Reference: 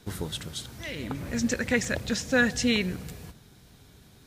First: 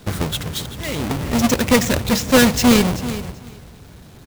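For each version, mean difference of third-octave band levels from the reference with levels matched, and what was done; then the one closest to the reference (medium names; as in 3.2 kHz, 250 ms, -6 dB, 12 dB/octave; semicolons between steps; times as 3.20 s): 4.0 dB: square wave that keeps the level; dynamic bell 1.7 kHz, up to -5 dB, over -43 dBFS, Q 4; on a send: feedback delay 385 ms, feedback 16%, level -14 dB; on the sum: trim +6.5 dB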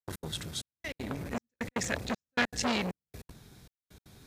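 9.5 dB: band-stop 3 kHz, Q 15; trance gate ".x.xxxxx.." 196 bpm -60 dB; transformer saturation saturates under 2 kHz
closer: first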